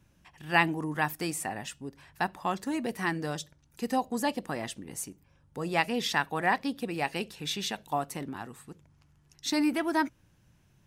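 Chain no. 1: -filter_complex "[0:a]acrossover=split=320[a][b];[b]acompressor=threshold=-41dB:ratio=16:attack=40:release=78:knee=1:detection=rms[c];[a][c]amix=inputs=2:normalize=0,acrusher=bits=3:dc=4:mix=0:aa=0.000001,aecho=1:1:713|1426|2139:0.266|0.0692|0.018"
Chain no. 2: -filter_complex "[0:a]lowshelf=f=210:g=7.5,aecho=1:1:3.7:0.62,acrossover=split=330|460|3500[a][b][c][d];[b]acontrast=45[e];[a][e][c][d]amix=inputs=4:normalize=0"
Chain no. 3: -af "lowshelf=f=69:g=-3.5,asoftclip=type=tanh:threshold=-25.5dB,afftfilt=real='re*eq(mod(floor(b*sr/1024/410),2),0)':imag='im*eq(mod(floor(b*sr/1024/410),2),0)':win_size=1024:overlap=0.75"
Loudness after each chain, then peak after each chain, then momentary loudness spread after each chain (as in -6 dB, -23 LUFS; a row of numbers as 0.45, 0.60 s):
-40.0, -26.5, -36.5 LUFS; -19.5, -7.5, -21.0 dBFS; 11, 14, 12 LU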